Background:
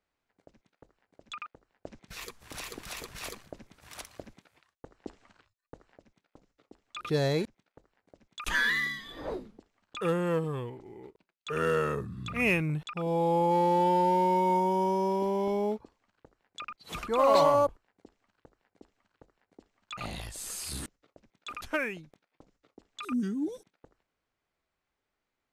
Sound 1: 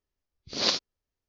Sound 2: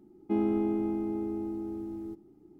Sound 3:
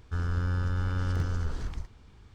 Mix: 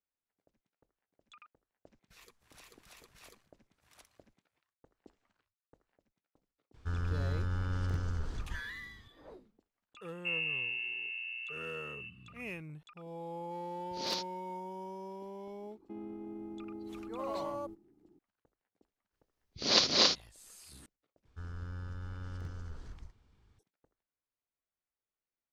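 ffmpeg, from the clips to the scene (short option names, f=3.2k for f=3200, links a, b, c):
-filter_complex "[3:a]asplit=2[a][b];[2:a]asplit=2[c][d];[1:a]asplit=2[e][f];[0:a]volume=-16.5dB[g];[c]lowpass=f=2.6k:t=q:w=0.5098,lowpass=f=2.6k:t=q:w=0.6013,lowpass=f=2.6k:t=q:w=0.9,lowpass=f=2.6k:t=q:w=2.563,afreqshift=-3000[h];[e]asoftclip=type=tanh:threshold=-17dB[i];[d]alimiter=level_in=4.5dB:limit=-24dB:level=0:latency=1:release=62,volume=-4.5dB[j];[f]aecho=1:1:239.1|274.1:0.708|0.794[k];[g]asplit=2[l][m];[l]atrim=end=21.254[n];[b]atrim=end=2.34,asetpts=PTS-STARTPTS,volume=-13.5dB[o];[m]atrim=start=23.586[p];[a]atrim=end=2.34,asetpts=PTS-STARTPTS,volume=-5dB,afade=t=in:d=0.004:c=hsin,afade=t=out:st=2.336:d=0.004:c=hsin,adelay=297234S[q];[h]atrim=end=2.59,asetpts=PTS-STARTPTS,volume=-8dB,afade=t=in:d=0.004:c=hsin,afade=t=out:st=2.586:d=0.004:c=hsin,adelay=9950[r];[i]atrim=end=1.28,asetpts=PTS-STARTPTS,volume=-9.5dB,afade=t=in:d=0.004:c=hsin,afade=t=out:st=1.276:d=0.004:c=hsin,adelay=13440[s];[j]atrim=end=2.59,asetpts=PTS-STARTPTS,volume=-9dB,afade=t=in:d=0.004:c=hsin,afade=t=out:st=2.586:d=0.004:c=hsin,adelay=15600[t];[k]atrim=end=1.28,asetpts=PTS-STARTPTS,volume=-0.5dB,afade=t=in:d=0.05,afade=t=out:st=1.23:d=0.05,adelay=19090[u];[n][o]acrossfade=d=0.004:c1=hsin:c2=hsin[v];[v][p]acrossfade=d=0.004:c1=hsin:c2=hsin[w];[w][q][r][s][t][u]amix=inputs=6:normalize=0"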